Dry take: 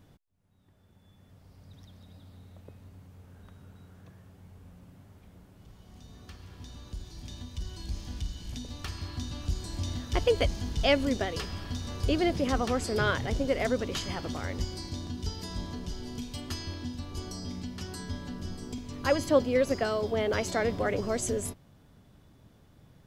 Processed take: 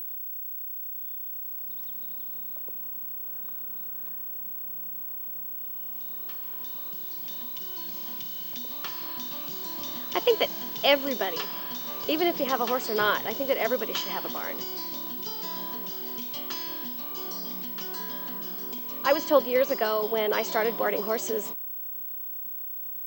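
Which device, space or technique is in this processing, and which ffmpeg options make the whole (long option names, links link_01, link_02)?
old television with a line whistle: -af "highpass=frequency=210:width=0.5412,highpass=frequency=210:width=1.3066,equalizer=frequency=260:width_type=q:width=4:gain=-8,equalizer=frequency=1000:width_type=q:width=4:gain=7,equalizer=frequency=3100:width_type=q:width=4:gain=4,lowpass=frequency=6800:width=0.5412,lowpass=frequency=6800:width=1.3066,aeval=exprs='val(0)+0.0178*sin(2*PI*15734*n/s)':channel_layout=same,volume=2.5dB"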